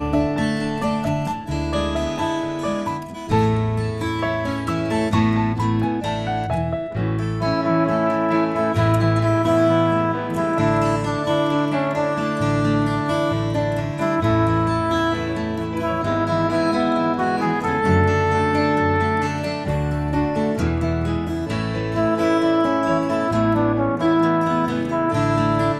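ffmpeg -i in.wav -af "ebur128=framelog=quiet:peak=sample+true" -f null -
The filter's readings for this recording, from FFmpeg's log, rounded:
Integrated loudness:
  I:         -20.5 LUFS
  Threshold: -30.5 LUFS
Loudness range:
  LRA:         3.4 LU
  Threshold: -40.5 LUFS
  LRA low:   -22.3 LUFS
  LRA high:  -19.0 LUFS
Sample peak:
  Peak:       -5.8 dBFS
True peak:
  Peak:       -5.8 dBFS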